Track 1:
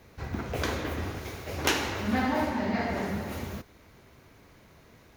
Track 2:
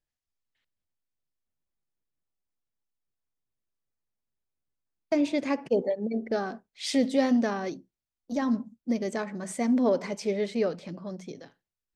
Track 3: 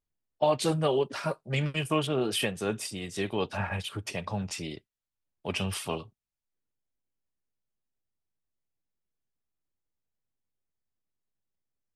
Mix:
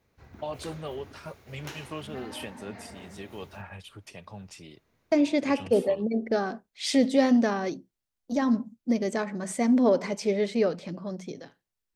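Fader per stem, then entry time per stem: -16.0, +2.5, -10.5 dB; 0.00, 0.00, 0.00 s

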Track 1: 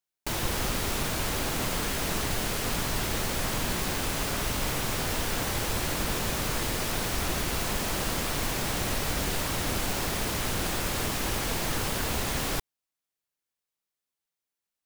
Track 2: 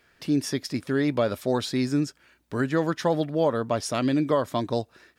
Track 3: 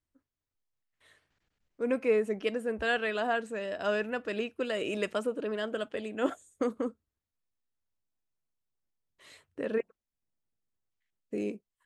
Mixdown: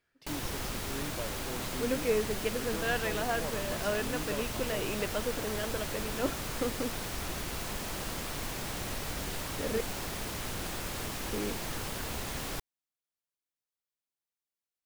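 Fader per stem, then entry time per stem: -7.5, -17.5, -3.0 dB; 0.00, 0.00, 0.00 s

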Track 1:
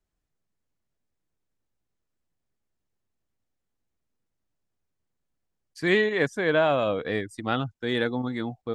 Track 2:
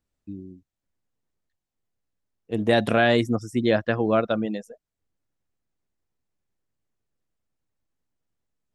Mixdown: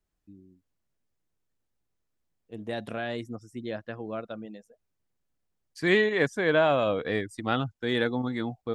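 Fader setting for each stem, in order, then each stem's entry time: -0.5, -14.0 dB; 0.00, 0.00 s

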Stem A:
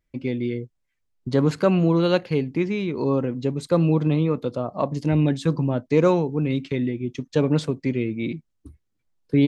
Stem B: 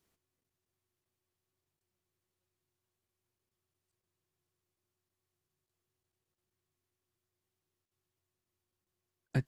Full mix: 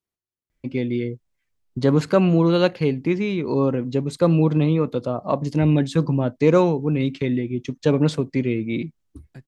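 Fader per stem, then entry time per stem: +2.0, -11.5 dB; 0.50, 0.00 s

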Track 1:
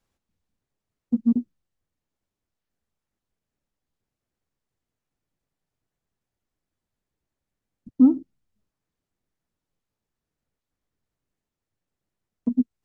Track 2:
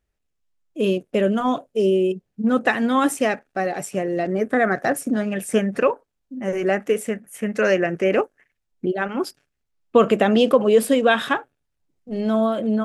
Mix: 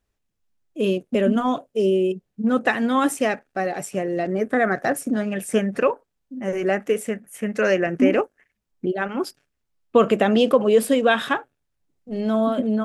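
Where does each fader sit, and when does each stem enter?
-4.0, -1.0 dB; 0.00, 0.00 s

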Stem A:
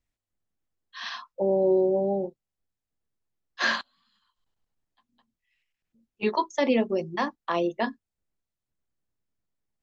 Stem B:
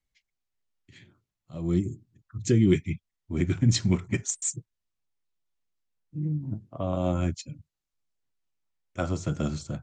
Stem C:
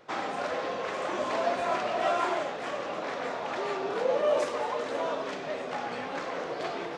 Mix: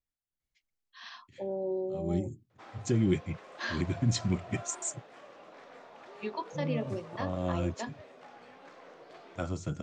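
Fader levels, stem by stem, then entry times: -11.5, -6.0, -18.0 dB; 0.00, 0.40, 2.50 s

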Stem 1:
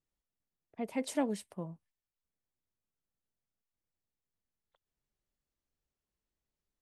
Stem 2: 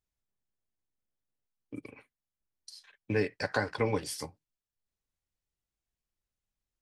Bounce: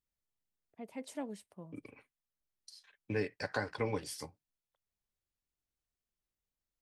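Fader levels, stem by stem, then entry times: -9.0, -5.5 dB; 0.00, 0.00 s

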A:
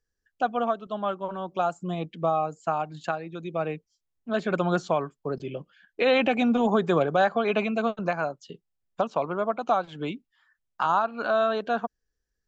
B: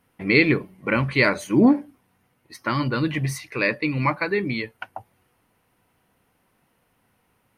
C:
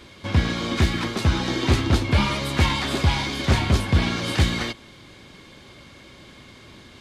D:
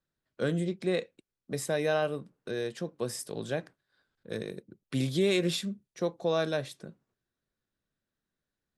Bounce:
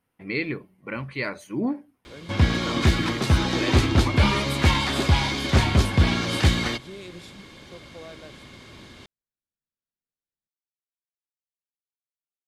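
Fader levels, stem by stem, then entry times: off, -10.5 dB, +0.5 dB, -15.0 dB; off, 0.00 s, 2.05 s, 1.70 s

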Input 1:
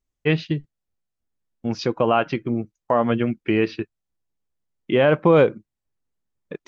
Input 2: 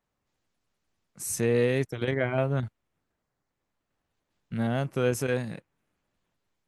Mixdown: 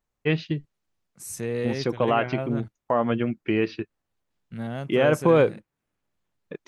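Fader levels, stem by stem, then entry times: -3.5, -4.5 dB; 0.00, 0.00 s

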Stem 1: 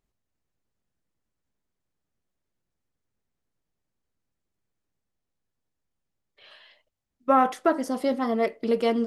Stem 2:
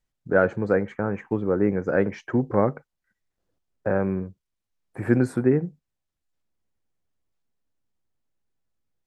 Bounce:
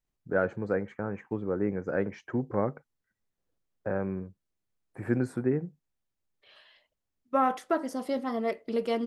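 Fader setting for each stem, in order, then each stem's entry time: -5.5, -7.5 dB; 0.05, 0.00 s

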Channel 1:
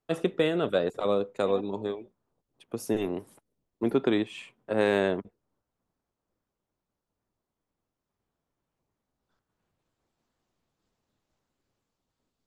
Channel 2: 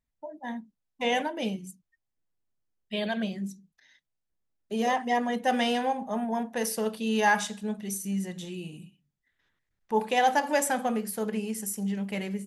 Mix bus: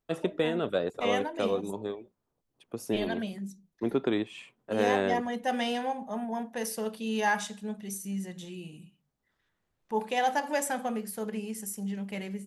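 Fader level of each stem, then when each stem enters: -3.0, -4.0 dB; 0.00, 0.00 s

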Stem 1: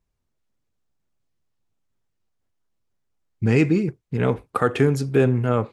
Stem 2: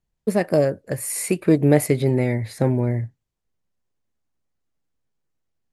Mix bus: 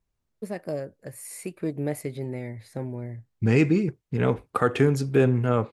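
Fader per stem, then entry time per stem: -2.0, -13.0 dB; 0.00, 0.15 s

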